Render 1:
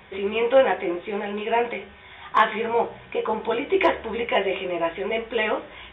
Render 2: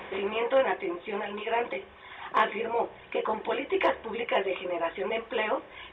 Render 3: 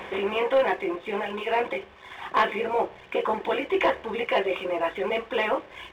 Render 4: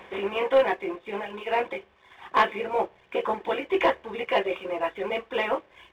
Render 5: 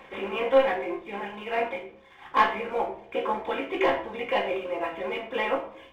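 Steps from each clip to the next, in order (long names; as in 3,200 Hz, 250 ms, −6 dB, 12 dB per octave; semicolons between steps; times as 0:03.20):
compressor on every frequency bin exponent 0.6; reverb reduction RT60 1.8 s; level −7.5 dB
leveller curve on the samples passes 1
expander for the loud parts 1.5 to 1, over −43 dBFS; level +2 dB
rectangular room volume 830 cubic metres, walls furnished, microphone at 2.2 metres; level −3.5 dB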